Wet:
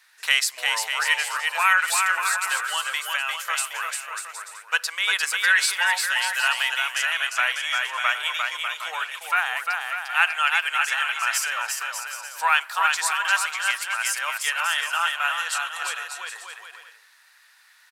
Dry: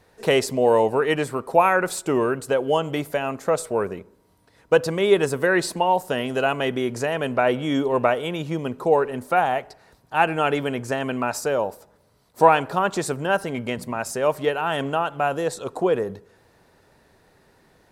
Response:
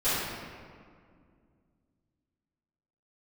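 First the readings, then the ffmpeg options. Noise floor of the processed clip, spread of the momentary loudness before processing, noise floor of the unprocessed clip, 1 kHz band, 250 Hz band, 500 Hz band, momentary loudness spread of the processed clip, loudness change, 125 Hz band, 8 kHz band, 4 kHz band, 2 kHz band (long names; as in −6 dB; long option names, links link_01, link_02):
−56 dBFS, 8 LU, −59 dBFS, −3.0 dB, below −40 dB, −23.5 dB, 10 LU, 0.0 dB, below −40 dB, +8.5 dB, +8.5 dB, +7.5 dB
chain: -af "highpass=frequency=1400:width=0.5412,highpass=frequency=1400:width=1.3066,aecho=1:1:350|595|766.5|886.6|970.6:0.631|0.398|0.251|0.158|0.1,volume=6.5dB"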